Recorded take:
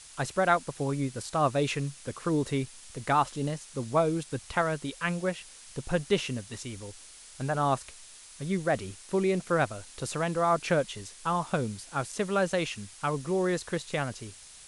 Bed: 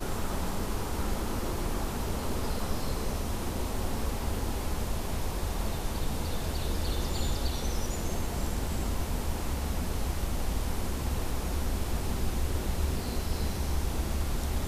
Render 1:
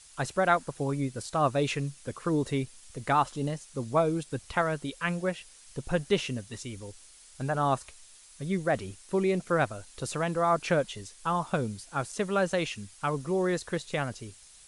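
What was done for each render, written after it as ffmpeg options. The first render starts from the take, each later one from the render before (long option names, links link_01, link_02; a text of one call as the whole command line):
ffmpeg -i in.wav -af "afftdn=noise_reduction=6:noise_floor=-50" out.wav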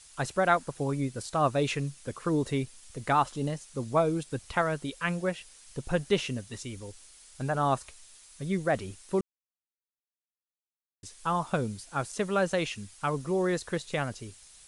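ffmpeg -i in.wav -filter_complex "[0:a]asplit=3[link_01][link_02][link_03];[link_01]atrim=end=9.21,asetpts=PTS-STARTPTS,afade=type=out:start_time=9.206:duration=0.004:curve=hsin[link_04];[link_02]atrim=start=9.21:end=11.03,asetpts=PTS-STARTPTS,volume=0[link_05];[link_03]atrim=start=11.03,asetpts=PTS-STARTPTS,afade=type=in:duration=0.004:curve=hsin[link_06];[link_04][link_05][link_06]concat=n=3:v=0:a=1" out.wav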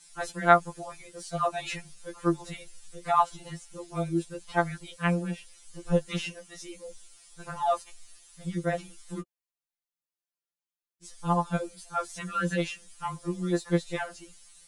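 ffmpeg -i in.wav -af "aphaser=in_gain=1:out_gain=1:delay=4.6:decay=0.35:speed=1.6:type=triangular,afftfilt=real='re*2.83*eq(mod(b,8),0)':imag='im*2.83*eq(mod(b,8),0)':win_size=2048:overlap=0.75" out.wav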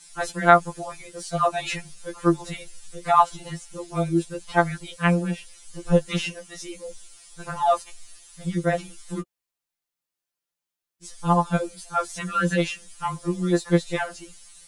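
ffmpeg -i in.wav -af "volume=6dB,alimiter=limit=-1dB:level=0:latency=1" out.wav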